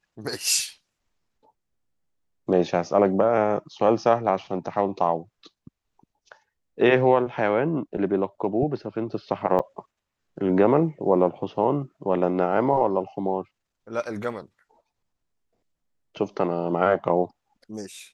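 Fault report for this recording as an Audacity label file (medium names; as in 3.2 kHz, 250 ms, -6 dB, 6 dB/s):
9.590000	9.600000	dropout 5.6 ms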